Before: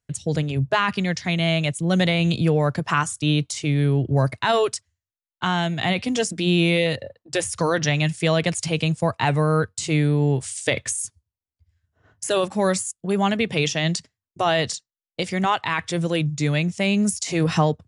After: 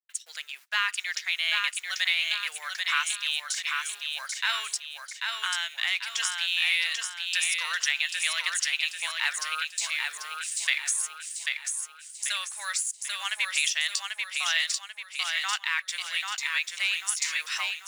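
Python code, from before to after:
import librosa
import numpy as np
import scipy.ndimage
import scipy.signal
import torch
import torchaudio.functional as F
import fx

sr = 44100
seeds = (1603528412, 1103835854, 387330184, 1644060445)

p1 = fx.law_mismatch(x, sr, coded='A')
p2 = scipy.signal.sosfilt(scipy.signal.butter(4, 1500.0, 'highpass', fs=sr, output='sos'), p1)
y = p2 + fx.echo_feedback(p2, sr, ms=790, feedback_pct=43, wet_db=-4, dry=0)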